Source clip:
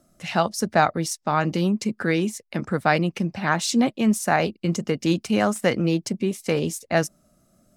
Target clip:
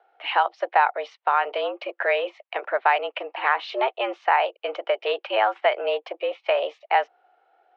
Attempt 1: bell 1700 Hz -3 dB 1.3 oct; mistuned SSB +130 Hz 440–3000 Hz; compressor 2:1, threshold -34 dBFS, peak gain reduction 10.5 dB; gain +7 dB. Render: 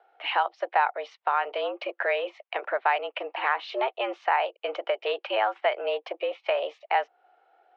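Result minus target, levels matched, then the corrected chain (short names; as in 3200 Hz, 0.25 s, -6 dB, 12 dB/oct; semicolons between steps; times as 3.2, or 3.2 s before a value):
compressor: peak gain reduction +4 dB
bell 1700 Hz -3 dB 1.3 oct; mistuned SSB +130 Hz 440–3000 Hz; compressor 2:1, threshold -25.5 dBFS, peak gain reduction 6.5 dB; gain +7 dB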